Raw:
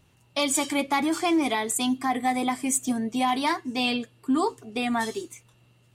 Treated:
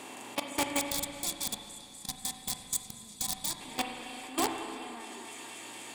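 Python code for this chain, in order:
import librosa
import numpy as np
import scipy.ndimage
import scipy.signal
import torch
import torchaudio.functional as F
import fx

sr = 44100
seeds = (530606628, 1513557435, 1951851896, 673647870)

y = fx.bin_compress(x, sr, power=0.4)
y = scipy.signal.sosfilt(scipy.signal.butter(2, 53.0, 'highpass', fs=sr, output='sos'), y)
y = fx.low_shelf(y, sr, hz=180.0, db=-8.0)
y = fx.echo_thinned(y, sr, ms=244, feedback_pct=79, hz=1000.0, wet_db=-4.5)
y = fx.level_steps(y, sr, step_db=19)
y = (np.mod(10.0 ** (11.0 / 20.0) * y + 1.0, 2.0) - 1.0) / 10.0 ** (11.0 / 20.0)
y = fx.spec_box(y, sr, start_s=0.79, length_s=2.82, low_hz=230.0, high_hz=3300.0, gain_db=-16)
y = fx.rev_spring(y, sr, rt60_s=2.4, pass_ms=(34, 42), chirp_ms=65, drr_db=4.0)
y = y * librosa.db_to_amplitude(-8.0)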